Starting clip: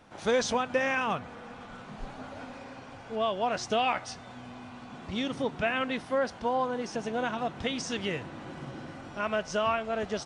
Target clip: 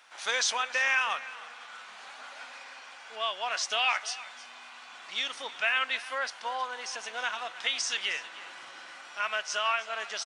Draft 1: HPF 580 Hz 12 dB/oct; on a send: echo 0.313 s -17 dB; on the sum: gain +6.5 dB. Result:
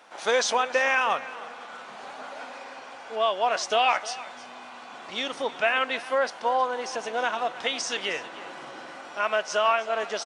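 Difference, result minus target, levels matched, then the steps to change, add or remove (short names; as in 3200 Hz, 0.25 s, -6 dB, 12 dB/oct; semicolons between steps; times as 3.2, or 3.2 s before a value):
500 Hz band +9.5 dB
change: HPF 1500 Hz 12 dB/oct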